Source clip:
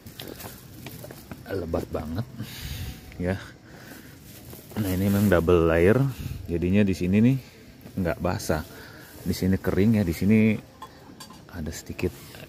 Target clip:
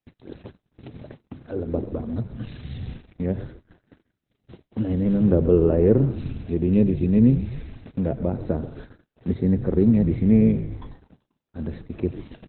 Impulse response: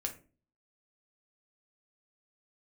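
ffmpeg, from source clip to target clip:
-filter_complex "[0:a]acrossover=split=8600[link_01][link_02];[link_02]acompressor=threshold=-58dB:ratio=4:attack=1:release=60[link_03];[link_01][link_03]amix=inputs=2:normalize=0,asplit=2[link_04][link_05];[link_05]adelay=90,highpass=300,lowpass=3400,asoftclip=type=hard:threshold=-13.5dB,volume=-17dB[link_06];[link_04][link_06]amix=inputs=2:normalize=0,acrossover=split=610[link_07][link_08];[link_08]acompressor=threshold=-50dB:ratio=5[link_09];[link_07][link_09]amix=inputs=2:normalize=0,highpass=48,bandreject=frequency=50:width_type=h:width=6,bandreject=frequency=100:width_type=h:width=6,bandreject=frequency=150:width_type=h:width=6,asplit=2[link_10][link_11];[link_11]asplit=6[link_12][link_13][link_14][link_15][link_16][link_17];[link_12]adelay=132,afreqshift=-58,volume=-12.5dB[link_18];[link_13]adelay=264,afreqshift=-116,volume=-17.4dB[link_19];[link_14]adelay=396,afreqshift=-174,volume=-22.3dB[link_20];[link_15]adelay=528,afreqshift=-232,volume=-27.1dB[link_21];[link_16]adelay=660,afreqshift=-290,volume=-32dB[link_22];[link_17]adelay=792,afreqshift=-348,volume=-36.9dB[link_23];[link_18][link_19][link_20][link_21][link_22][link_23]amix=inputs=6:normalize=0[link_24];[link_10][link_24]amix=inputs=2:normalize=0,agate=range=-43dB:threshold=-41dB:ratio=16:detection=peak,volume=3.5dB" -ar 48000 -c:a libopus -b:a 8k

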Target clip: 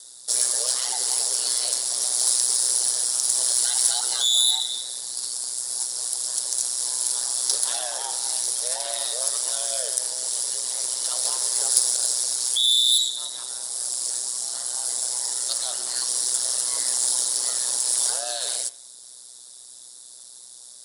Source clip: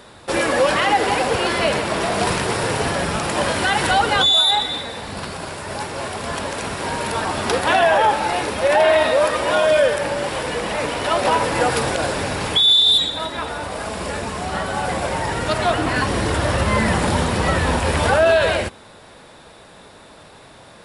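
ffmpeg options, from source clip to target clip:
ffmpeg -i in.wav -filter_complex "[0:a]bandreject=frequency=89.46:width_type=h:width=4,bandreject=frequency=178.92:width_type=h:width=4,bandreject=frequency=268.38:width_type=h:width=4,bandreject=frequency=357.84:width_type=h:width=4,bandreject=frequency=447.3:width_type=h:width=4,bandreject=frequency=536.76:width_type=h:width=4,bandreject=frequency=626.22:width_type=h:width=4,bandreject=frequency=715.68:width_type=h:width=4,bandreject=frequency=805.14:width_type=h:width=4,bandreject=frequency=894.6:width_type=h:width=4,bandreject=frequency=984.06:width_type=h:width=4,bandreject=frequency=1073.52:width_type=h:width=4,bandreject=frequency=1162.98:width_type=h:width=4,bandreject=frequency=1252.44:width_type=h:width=4,bandreject=frequency=1341.9:width_type=h:width=4,bandreject=frequency=1431.36:width_type=h:width=4,bandreject=frequency=1520.82:width_type=h:width=4,bandreject=frequency=1610.28:width_type=h:width=4,bandreject=frequency=1699.74:width_type=h:width=4,bandreject=frequency=1789.2:width_type=h:width=4,bandreject=frequency=1878.66:width_type=h:width=4,bandreject=frequency=1968.12:width_type=h:width=4,bandreject=frequency=2057.58:width_type=h:width=4,bandreject=frequency=2147.04:width_type=h:width=4,bandreject=frequency=2236.5:width_type=h:width=4,bandreject=frequency=2325.96:width_type=h:width=4,bandreject=frequency=2415.42:width_type=h:width=4,bandreject=frequency=2504.88:width_type=h:width=4,bandreject=frequency=2594.34:width_type=h:width=4,bandreject=frequency=2683.8:width_type=h:width=4,bandreject=frequency=2773.26:width_type=h:width=4,bandreject=frequency=2862.72:width_type=h:width=4,bandreject=frequency=2952.18:width_type=h:width=4,bandreject=frequency=3041.64:width_type=h:width=4,bandreject=frequency=3131.1:width_type=h:width=4,bandreject=frequency=3220.56:width_type=h:width=4,aeval=exprs='val(0)*sin(2*PI*62*n/s)':channel_layout=same,acrossover=split=340[link_01][link_02];[link_01]acompressor=threshold=-42dB:ratio=6[link_03];[link_03][link_02]amix=inputs=2:normalize=0,bass=frequency=250:gain=-7,treble=frequency=4000:gain=6,aexciter=amount=13.6:drive=8.1:freq=4000,volume=-18dB" out.wav

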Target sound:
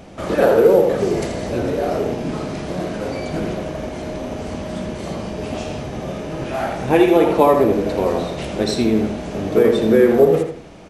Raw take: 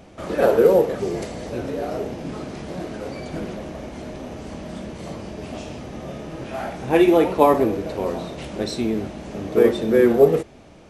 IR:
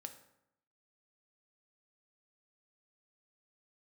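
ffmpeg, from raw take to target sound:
-filter_complex "[0:a]acompressor=threshold=-18dB:ratio=2,asplit=2[link_01][link_02];[link_02]adelay=82,lowpass=frequency=4300:poles=1,volume=-6dB,asplit=2[link_03][link_04];[link_04]adelay=82,lowpass=frequency=4300:poles=1,volume=0.32,asplit=2[link_05][link_06];[link_06]adelay=82,lowpass=frequency=4300:poles=1,volume=0.32,asplit=2[link_07][link_08];[link_08]adelay=82,lowpass=frequency=4300:poles=1,volume=0.32[link_09];[link_03][link_05][link_07][link_09]amix=inputs=4:normalize=0[link_10];[link_01][link_10]amix=inputs=2:normalize=0,volume=5.5dB"

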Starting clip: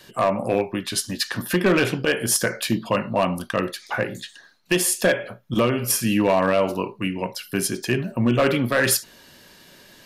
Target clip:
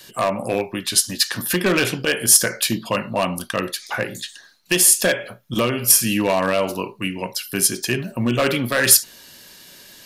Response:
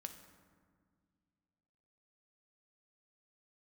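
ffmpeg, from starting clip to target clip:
-af "highshelf=frequency=3100:gain=11,volume=-1dB"

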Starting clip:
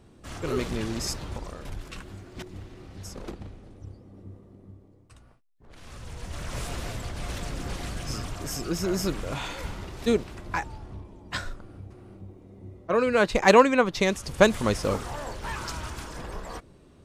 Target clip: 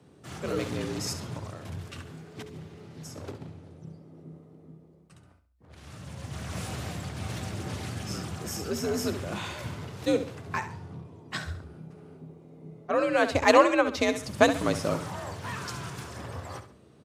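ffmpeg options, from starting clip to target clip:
ffmpeg -i in.wav -af "afreqshift=62,aecho=1:1:68|136|204|272:0.282|0.101|0.0365|0.0131,volume=-2dB" -ar 44100 -c:a libmp3lame -b:a 96k out.mp3

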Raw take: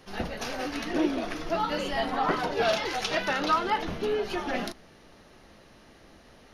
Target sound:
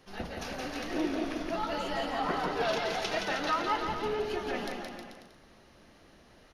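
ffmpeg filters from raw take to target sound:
ffmpeg -i in.wav -af "aecho=1:1:170|314.5|437.3|541.7|630.5:0.631|0.398|0.251|0.158|0.1,volume=-6dB" out.wav

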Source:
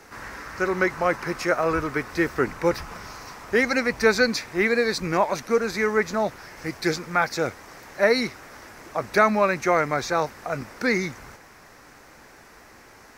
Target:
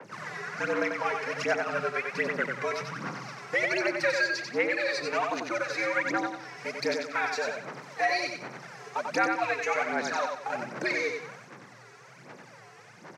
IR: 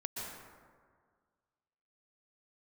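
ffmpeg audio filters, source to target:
-filter_complex "[0:a]aphaser=in_gain=1:out_gain=1:delay=3.3:decay=0.79:speed=1.3:type=sinusoidal,acrossover=split=500|1700[link_01][link_02][link_03];[link_01]acompressor=threshold=-31dB:ratio=4[link_04];[link_02]acompressor=threshold=-30dB:ratio=4[link_05];[link_03]acompressor=threshold=-26dB:ratio=4[link_06];[link_04][link_05][link_06]amix=inputs=3:normalize=0,asplit=2[link_07][link_08];[link_08]aeval=exprs='sgn(val(0))*max(abs(val(0))-0.0133,0)':channel_layout=same,volume=-3dB[link_09];[link_07][link_09]amix=inputs=2:normalize=0,lowpass=6900,afreqshift=110,asplit=2[link_10][link_11];[link_11]aecho=0:1:92|184|276|368:0.596|0.203|0.0689|0.0234[link_12];[link_10][link_12]amix=inputs=2:normalize=0,adynamicequalizer=threshold=0.0126:dfrequency=3700:dqfactor=0.7:tfrequency=3700:tqfactor=0.7:attack=5:release=100:ratio=0.375:range=2.5:mode=cutabove:tftype=highshelf,volume=-8dB"

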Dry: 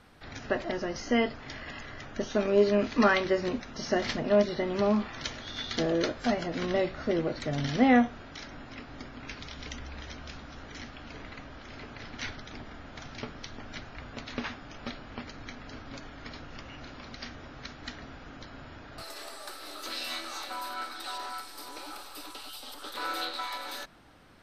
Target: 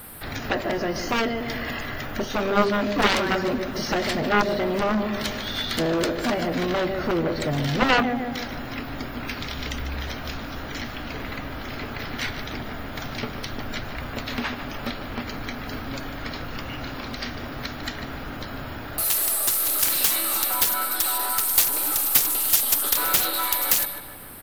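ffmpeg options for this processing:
ffmpeg -i in.wav -filter_complex "[0:a]asplit=2[link_01][link_02];[link_02]acompressor=threshold=-40dB:ratio=6,volume=-1dB[link_03];[link_01][link_03]amix=inputs=2:normalize=0,asplit=2[link_04][link_05];[link_05]adelay=149,lowpass=frequency=4200:poles=1,volume=-10dB,asplit=2[link_06][link_07];[link_07]adelay=149,lowpass=frequency=4200:poles=1,volume=0.53,asplit=2[link_08][link_09];[link_09]adelay=149,lowpass=frequency=4200:poles=1,volume=0.53,asplit=2[link_10][link_11];[link_11]adelay=149,lowpass=frequency=4200:poles=1,volume=0.53,asplit=2[link_12][link_13];[link_13]adelay=149,lowpass=frequency=4200:poles=1,volume=0.53,asplit=2[link_14][link_15];[link_15]adelay=149,lowpass=frequency=4200:poles=1,volume=0.53[link_16];[link_04][link_06][link_08][link_10][link_12][link_14][link_16]amix=inputs=7:normalize=0,aexciter=amount=11:drive=9.7:freq=9300,aeval=exprs='0.447*(cos(1*acos(clip(val(0)/0.447,-1,1)))-cos(1*PI/2))+0.0501*(cos(3*acos(clip(val(0)/0.447,-1,1)))-cos(3*PI/2))+0.141*(cos(7*acos(clip(val(0)/0.447,-1,1)))-cos(7*PI/2))':channel_layout=same,volume=2.5dB" out.wav

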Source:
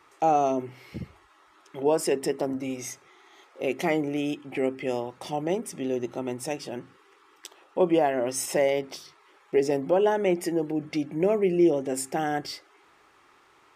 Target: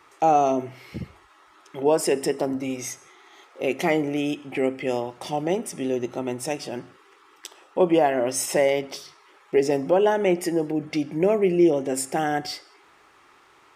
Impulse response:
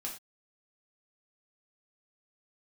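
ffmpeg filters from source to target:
-filter_complex "[0:a]asplit=2[link_01][link_02];[link_02]highpass=540[link_03];[1:a]atrim=start_sample=2205,asetrate=24255,aresample=44100[link_04];[link_03][link_04]afir=irnorm=-1:irlink=0,volume=-18dB[link_05];[link_01][link_05]amix=inputs=2:normalize=0,volume=3dB"

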